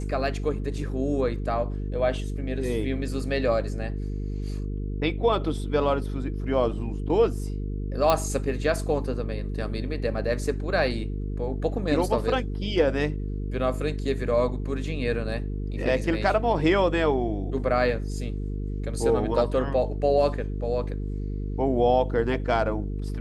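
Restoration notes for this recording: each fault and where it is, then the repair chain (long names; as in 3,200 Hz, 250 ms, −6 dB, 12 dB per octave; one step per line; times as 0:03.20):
mains buzz 50 Hz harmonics 9 −30 dBFS
0:08.10: click −8 dBFS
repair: click removal
hum removal 50 Hz, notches 9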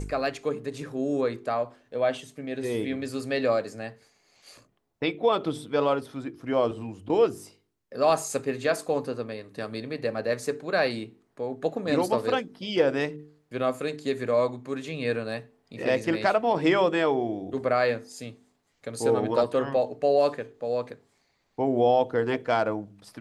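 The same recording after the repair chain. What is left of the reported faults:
none of them is left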